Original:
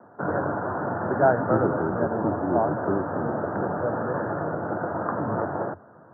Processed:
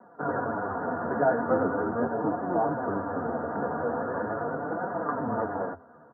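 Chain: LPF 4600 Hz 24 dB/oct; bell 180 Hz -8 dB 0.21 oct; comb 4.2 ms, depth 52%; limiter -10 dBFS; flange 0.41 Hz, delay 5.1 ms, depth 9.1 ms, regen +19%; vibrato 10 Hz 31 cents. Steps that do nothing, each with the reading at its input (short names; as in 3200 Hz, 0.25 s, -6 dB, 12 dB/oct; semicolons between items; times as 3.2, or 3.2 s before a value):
LPF 4600 Hz: input band ends at 1800 Hz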